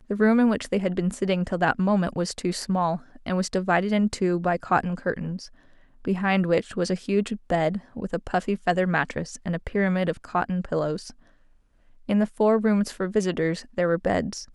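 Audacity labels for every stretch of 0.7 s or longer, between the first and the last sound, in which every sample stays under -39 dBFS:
11.100000	12.090000	silence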